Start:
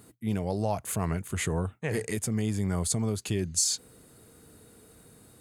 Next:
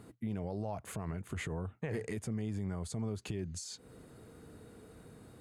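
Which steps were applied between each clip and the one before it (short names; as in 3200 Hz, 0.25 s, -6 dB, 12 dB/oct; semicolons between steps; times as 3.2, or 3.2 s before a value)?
compressor 6:1, threshold -34 dBFS, peak gain reduction 12 dB; LPF 2000 Hz 6 dB/oct; limiter -30 dBFS, peak gain reduction 5.5 dB; gain +2 dB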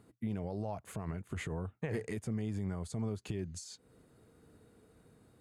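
upward expander 1.5:1, over -55 dBFS; gain +1.5 dB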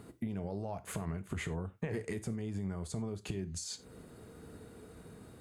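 compressor 3:1, threshold -48 dBFS, peak gain reduction 12 dB; non-linear reverb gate 0.12 s falling, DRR 11 dB; gain +10 dB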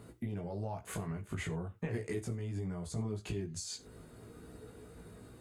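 chorus voices 4, 0.4 Hz, delay 18 ms, depth 1.8 ms; gain +2.5 dB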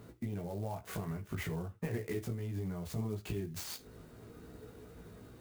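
clock jitter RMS 0.028 ms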